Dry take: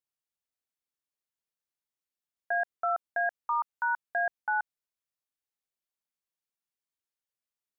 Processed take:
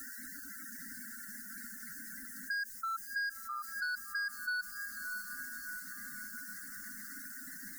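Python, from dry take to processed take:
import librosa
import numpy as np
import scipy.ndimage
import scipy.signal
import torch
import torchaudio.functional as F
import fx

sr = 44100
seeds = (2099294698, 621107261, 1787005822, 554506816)

p1 = fx.quant_dither(x, sr, seeds[0], bits=8, dither='triangular')
p2 = scipy.signal.sosfilt(scipy.signal.cheby1(3, 1.0, [280.0, 1500.0], 'bandstop', fs=sr, output='sos'), p1)
p3 = fx.fixed_phaser(p2, sr, hz=570.0, stages=8)
p4 = fx.spec_gate(p3, sr, threshold_db=-10, keep='strong')
p5 = np.clip(p4, -10.0 ** (-34.0 / 20.0), 10.0 ** (-34.0 / 20.0))
p6 = p5 + fx.echo_diffused(p5, sr, ms=631, feedback_pct=44, wet_db=-10.5, dry=0)
p7 = fx.band_squash(p6, sr, depth_pct=70)
y = p7 * 10.0 ** (2.5 / 20.0)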